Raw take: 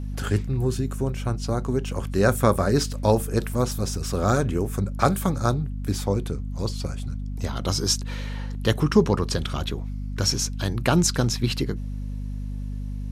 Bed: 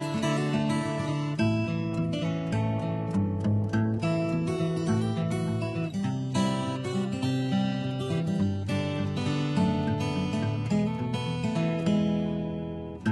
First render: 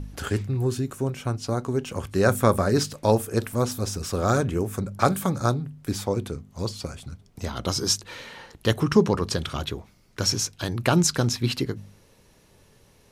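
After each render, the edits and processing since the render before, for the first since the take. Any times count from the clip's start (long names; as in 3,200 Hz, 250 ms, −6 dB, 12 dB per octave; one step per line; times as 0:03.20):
hum removal 50 Hz, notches 5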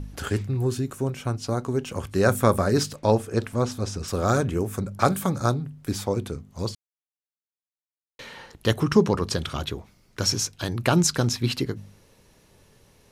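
0:02.96–0:04.08: high-frequency loss of the air 57 metres
0:06.75–0:08.19: silence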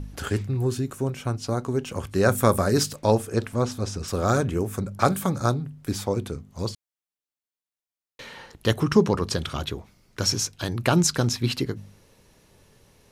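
0:02.38–0:03.36: high-shelf EQ 7,100 Hz +7.5 dB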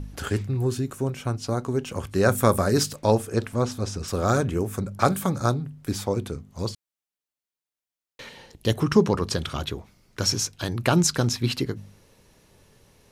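0:08.29–0:08.75: parametric band 1,300 Hz −10.5 dB 1.1 octaves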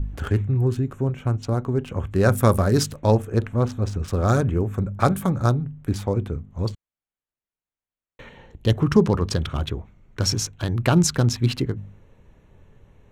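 adaptive Wiener filter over 9 samples
low-shelf EQ 110 Hz +12 dB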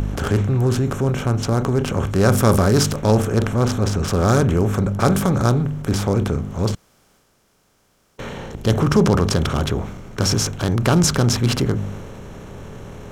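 compressor on every frequency bin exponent 0.6
transient designer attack −2 dB, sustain +4 dB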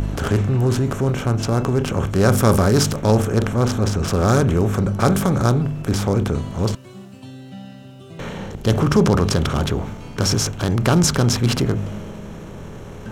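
mix in bed −10 dB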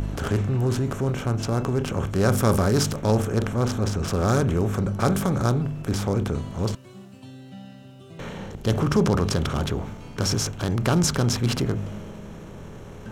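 level −5 dB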